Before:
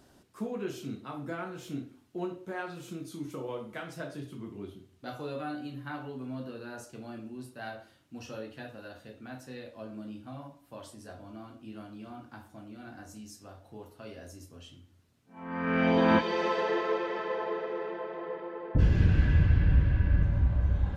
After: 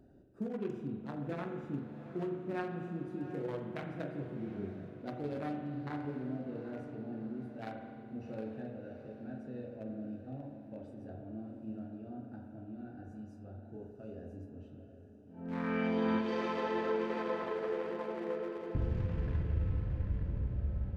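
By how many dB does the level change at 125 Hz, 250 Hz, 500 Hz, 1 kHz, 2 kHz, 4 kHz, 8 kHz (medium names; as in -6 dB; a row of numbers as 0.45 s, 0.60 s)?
-9.0 dB, -3.5 dB, -4.0 dB, -6.5 dB, -8.5 dB, -9.5 dB, no reading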